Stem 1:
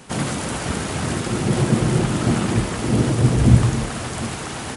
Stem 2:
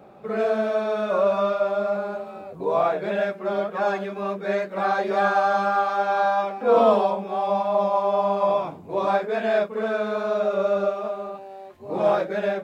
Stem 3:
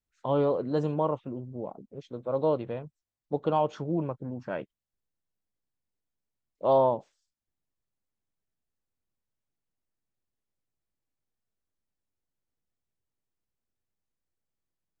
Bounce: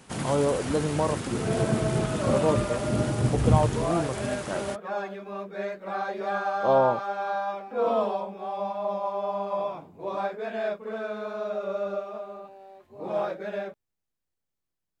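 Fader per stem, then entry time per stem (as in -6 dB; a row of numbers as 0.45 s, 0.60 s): -8.5 dB, -8.0 dB, +1.0 dB; 0.00 s, 1.10 s, 0.00 s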